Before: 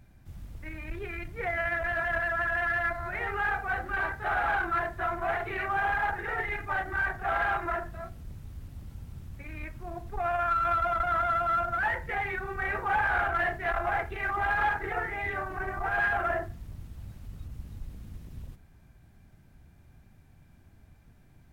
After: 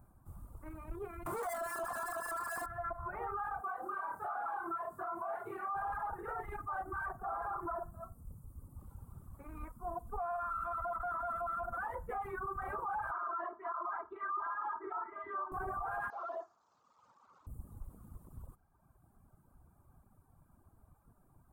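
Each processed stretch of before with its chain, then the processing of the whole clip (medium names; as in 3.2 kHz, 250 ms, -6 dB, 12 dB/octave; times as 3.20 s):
1.26–2.66 s: bass shelf 220 Hz -7 dB + doubling 21 ms -2.5 dB + overdrive pedal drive 38 dB, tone 4.3 kHz, clips at -17 dBFS
3.61–5.75 s: high-pass 200 Hz + compression 3:1, threshold -34 dBFS + flutter echo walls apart 4.6 m, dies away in 0.33 s
7.22–8.80 s: peaking EQ 2.9 kHz -10 dB 1.1 oct + doubling 50 ms -11 dB
9.53–12.27 s: band-stop 4.2 kHz, Q 27 + comb 4.1 ms, depth 48%
13.11–15.52 s: cabinet simulation 440–3000 Hz, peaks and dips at 500 Hz -8 dB, 720 Hz -9 dB, 1.1 kHz +7 dB, 1.7 kHz -4 dB, 2.5 kHz -10 dB + comb 3.1 ms, depth 95%
16.10–17.47 s: one-bit delta coder 32 kbps, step -48.5 dBFS + high-pass 670 Hz + hard clipper -33 dBFS
whole clip: reverb removal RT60 1.5 s; FFT filter 160 Hz 0 dB, 670 Hz +4 dB, 1.2 kHz +12 dB, 1.9 kHz -15 dB, 2.8 kHz -17 dB, 5.7 kHz -13 dB, 8.6 kHz +6 dB; peak limiter -26 dBFS; trim -5.5 dB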